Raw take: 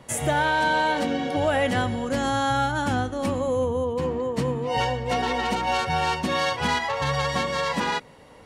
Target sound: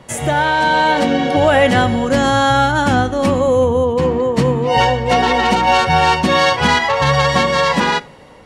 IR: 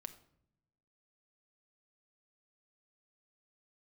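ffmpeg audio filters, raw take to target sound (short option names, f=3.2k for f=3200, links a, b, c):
-filter_complex "[0:a]dynaudnorm=f=320:g=5:m=4.5dB,asplit=2[a][b];[1:a]atrim=start_sample=2205,atrim=end_sample=3969,lowpass=8.7k[c];[b][c]afir=irnorm=-1:irlink=0,volume=1dB[d];[a][d]amix=inputs=2:normalize=0,volume=2dB"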